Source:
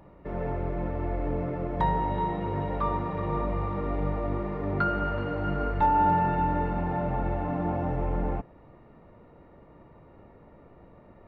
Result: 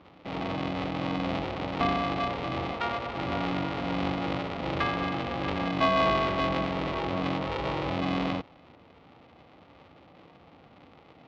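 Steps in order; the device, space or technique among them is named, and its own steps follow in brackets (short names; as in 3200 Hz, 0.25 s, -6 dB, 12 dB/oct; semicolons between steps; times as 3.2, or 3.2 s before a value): 2.71–3.16 HPF 170 Hz; ring modulator pedal into a guitar cabinet (polarity switched at an audio rate 230 Hz; speaker cabinet 96–3800 Hz, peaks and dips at 120 Hz -5 dB, 210 Hz -6 dB, 390 Hz -9 dB, 640 Hz -4 dB, 1000 Hz -4 dB, 1600 Hz -9 dB); gain +2.5 dB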